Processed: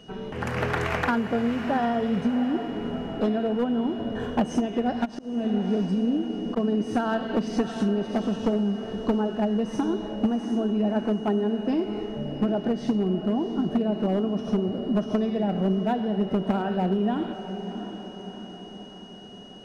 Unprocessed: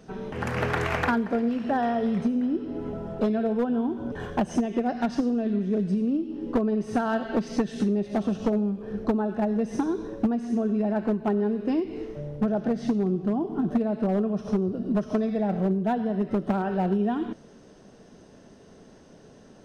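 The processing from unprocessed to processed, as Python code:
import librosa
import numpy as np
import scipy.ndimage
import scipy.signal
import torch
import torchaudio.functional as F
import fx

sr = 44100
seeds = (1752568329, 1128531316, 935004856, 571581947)

y = x + 10.0 ** (-52.0 / 20.0) * np.sin(2.0 * np.pi * 2900.0 * np.arange(len(x)) / sr)
y = fx.echo_diffused(y, sr, ms=699, feedback_pct=54, wet_db=-10.0)
y = fx.auto_swell(y, sr, attack_ms=256.0, at=(5.04, 6.56), fade=0.02)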